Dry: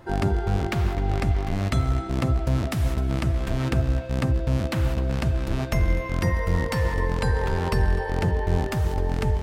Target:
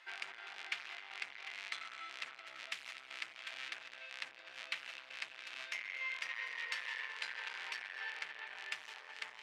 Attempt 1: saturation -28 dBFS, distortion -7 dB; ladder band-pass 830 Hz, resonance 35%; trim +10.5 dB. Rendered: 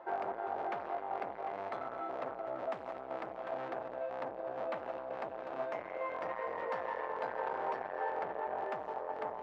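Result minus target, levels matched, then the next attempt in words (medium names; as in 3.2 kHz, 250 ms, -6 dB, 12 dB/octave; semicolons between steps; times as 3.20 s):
4 kHz band -20.0 dB
saturation -28 dBFS, distortion -7 dB; ladder band-pass 2.9 kHz, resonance 35%; trim +10.5 dB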